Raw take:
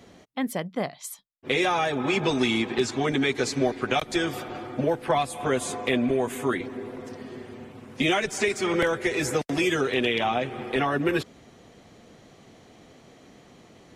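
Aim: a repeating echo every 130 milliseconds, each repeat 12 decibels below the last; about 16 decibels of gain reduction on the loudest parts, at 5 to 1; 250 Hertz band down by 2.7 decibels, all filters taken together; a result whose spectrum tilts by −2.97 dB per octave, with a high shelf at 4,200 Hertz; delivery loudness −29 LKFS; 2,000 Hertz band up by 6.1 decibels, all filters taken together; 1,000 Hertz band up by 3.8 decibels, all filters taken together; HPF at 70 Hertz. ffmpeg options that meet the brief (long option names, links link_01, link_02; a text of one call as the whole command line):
ffmpeg -i in.wav -af "highpass=70,equalizer=frequency=250:width_type=o:gain=-4,equalizer=frequency=1000:width_type=o:gain=4,equalizer=frequency=2000:width_type=o:gain=5,highshelf=frequency=4200:gain=6.5,acompressor=threshold=-35dB:ratio=5,aecho=1:1:130|260|390:0.251|0.0628|0.0157,volume=7.5dB" out.wav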